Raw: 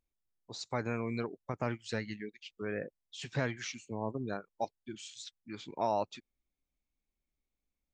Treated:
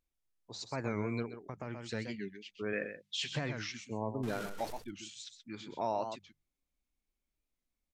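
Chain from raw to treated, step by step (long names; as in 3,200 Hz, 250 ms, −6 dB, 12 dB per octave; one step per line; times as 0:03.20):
0:04.23–0:04.79: converter with a step at zero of −37 dBFS
mains-hum notches 50/100/150/200 Hz
downsampling to 32,000 Hz
0:02.73–0:03.31: meter weighting curve D
single-tap delay 128 ms −10 dB
brickwall limiter −24 dBFS, peak gain reduction 6 dB
0:01.22–0:01.91: downward compressor 2.5 to 1, threshold −39 dBFS, peak gain reduction 5.5 dB
harmonic and percussive parts rebalanced percussive −3 dB
wow of a warped record 45 rpm, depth 160 cents
level +1 dB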